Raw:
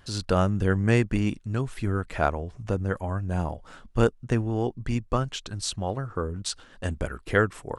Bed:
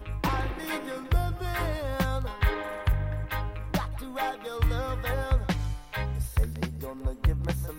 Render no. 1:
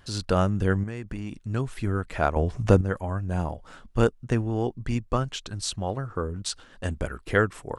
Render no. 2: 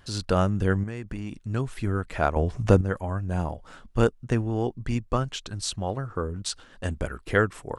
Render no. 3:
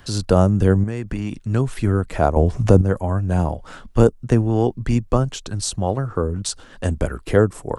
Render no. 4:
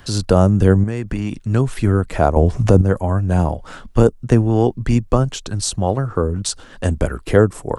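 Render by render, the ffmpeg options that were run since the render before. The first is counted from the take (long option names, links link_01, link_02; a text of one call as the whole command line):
ffmpeg -i in.wav -filter_complex "[0:a]asettb=1/sr,asplit=3[link_01][link_02][link_03];[link_01]atrim=end=0.834[link_04];[link_02]atrim=start=0.83:end=1.45,asetpts=PTS-STARTPTS,afade=type=in:duration=0.004:curve=qsin,afade=type=out:start_time=0.616:duration=0.004:curve=qsin,acompressor=threshold=-28dB:ratio=20:attack=3.2:release=140:knee=1:detection=peak[link_05];[link_03]atrim=start=1.446[link_06];[link_04][link_05]acrossfade=duration=0.004:curve1=hsin:curve2=qsin[link_07];[link_07][link_06]acrossfade=duration=0.004:curve1=qsin:curve2=hsin,asplit=3[link_08][link_09][link_10];[link_08]atrim=end=2.362[link_11];[link_09]atrim=start=2.358:end=2.812,asetpts=PTS-STARTPTS,volume=9.5dB[link_12];[link_10]atrim=start=2.808[link_13];[link_11][link_12]acrossfade=duration=0.004:curve1=hsin:curve2=hsin[link_14];[link_14][link_13]acrossfade=duration=0.004:curve1=hsin:curve2=hsin" out.wav
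ffmpeg -i in.wav -af anull out.wav
ffmpeg -i in.wav -filter_complex "[0:a]acrossover=split=140|990|5400[link_01][link_02][link_03][link_04];[link_03]acompressor=threshold=-44dB:ratio=6[link_05];[link_01][link_02][link_05][link_04]amix=inputs=4:normalize=0,alimiter=level_in=8.5dB:limit=-1dB:release=50:level=0:latency=1" out.wav
ffmpeg -i in.wav -af "volume=3dB,alimiter=limit=-1dB:level=0:latency=1" out.wav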